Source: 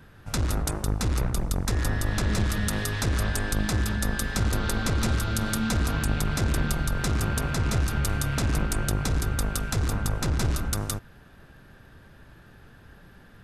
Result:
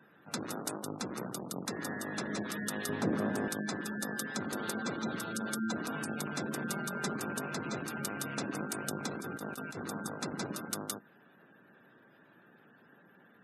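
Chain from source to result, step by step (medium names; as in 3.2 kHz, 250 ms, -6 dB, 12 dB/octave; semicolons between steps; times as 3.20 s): octave divider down 1 oct, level -3 dB; high-pass 190 Hz 24 dB/octave; spectral gate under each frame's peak -20 dB strong; 2.89–3.48 s: tilt shelf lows +9 dB, about 1.4 kHz; 6.70–7.16 s: comb 5 ms, depth 55%; 9.10–9.86 s: compressor with a negative ratio -34 dBFS, ratio -0.5; trim -6 dB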